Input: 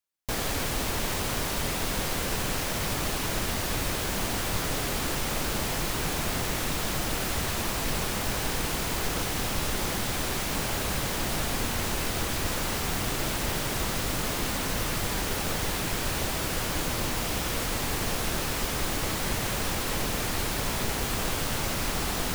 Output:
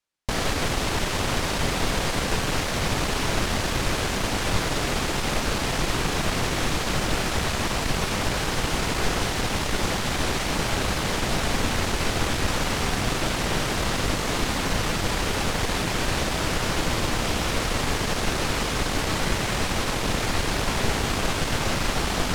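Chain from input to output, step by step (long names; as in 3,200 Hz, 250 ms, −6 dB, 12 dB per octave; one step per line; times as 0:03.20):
wavefolder on the positive side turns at −27.5 dBFS
high-frequency loss of the air 52 metres
level +7 dB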